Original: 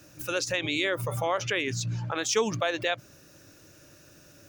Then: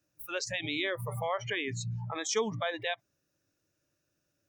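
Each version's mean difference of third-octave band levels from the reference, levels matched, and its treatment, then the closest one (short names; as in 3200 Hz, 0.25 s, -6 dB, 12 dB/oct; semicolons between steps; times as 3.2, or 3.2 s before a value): 11.0 dB: spectral noise reduction 21 dB; gain -4.5 dB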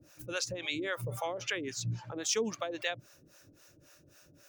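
5.0 dB: harmonic tremolo 3.7 Hz, depth 100%, crossover 540 Hz; gain -2 dB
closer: second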